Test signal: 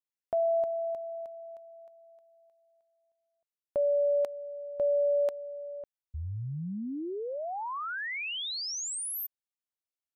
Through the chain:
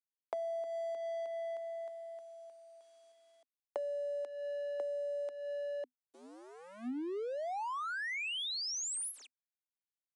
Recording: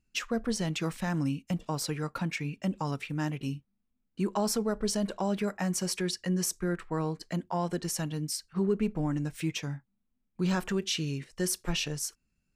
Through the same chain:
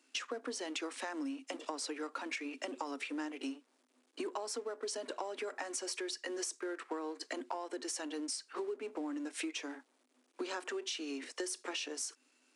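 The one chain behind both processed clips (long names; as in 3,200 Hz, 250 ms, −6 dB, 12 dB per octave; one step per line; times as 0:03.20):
mu-law and A-law mismatch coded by mu
downsampling to 22,050 Hz
Chebyshev high-pass filter 250 Hz, order 8
downward compressor 12 to 1, threshold −40 dBFS
level +3.5 dB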